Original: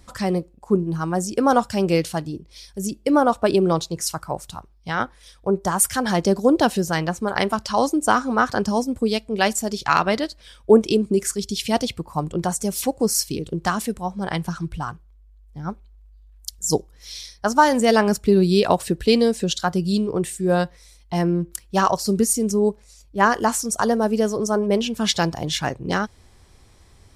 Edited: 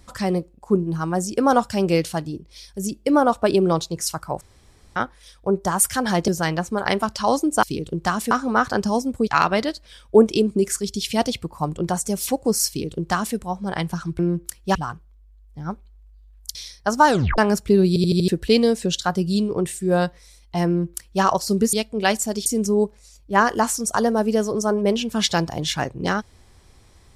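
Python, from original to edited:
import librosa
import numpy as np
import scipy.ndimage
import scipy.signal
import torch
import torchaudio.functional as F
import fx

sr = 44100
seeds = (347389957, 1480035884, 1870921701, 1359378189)

y = fx.edit(x, sr, fx.room_tone_fill(start_s=4.41, length_s=0.55),
    fx.cut(start_s=6.28, length_s=0.5),
    fx.move(start_s=9.09, length_s=0.73, to_s=22.31),
    fx.duplicate(start_s=13.23, length_s=0.68, to_s=8.13),
    fx.cut(start_s=16.54, length_s=0.59),
    fx.tape_stop(start_s=17.65, length_s=0.31),
    fx.stutter_over(start_s=18.46, slice_s=0.08, count=5),
    fx.duplicate(start_s=21.25, length_s=0.56, to_s=14.74), tone=tone)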